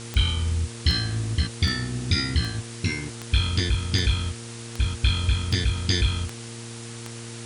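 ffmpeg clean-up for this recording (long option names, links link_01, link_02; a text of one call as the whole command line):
ffmpeg -i in.wav -af "adeclick=threshold=4,bandreject=frequency=116.1:width_type=h:width=4,bandreject=frequency=232.2:width_type=h:width=4,bandreject=frequency=348.3:width_type=h:width=4,bandreject=frequency=464.4:width_type=h:width=4,afftdn=noise_reduction=30:noise_floor=-38" out.wav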